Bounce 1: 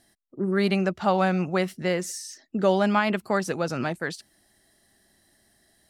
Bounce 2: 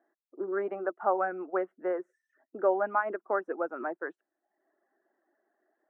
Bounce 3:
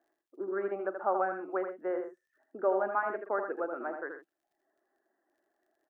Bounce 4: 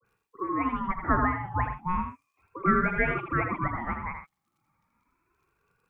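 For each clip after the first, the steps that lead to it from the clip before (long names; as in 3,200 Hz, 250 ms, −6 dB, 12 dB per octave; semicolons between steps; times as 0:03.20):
elliptic band-pass filter 320–1,500 Hz, stop band 50 dB; reverb reduction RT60 0.68 s; level −3 dB
surface crackle 24 per second −63 dBFS; multi-tap delay 41/80/127 ms −19/−6.5/−13.5 dB; level −3 dB
all-pass dispersion highs, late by 50 ms, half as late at 690 Hz; ring modulator whose carrier an LFO sweeps 640 Hz, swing 25%, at 0.34 Hz; level +8 dB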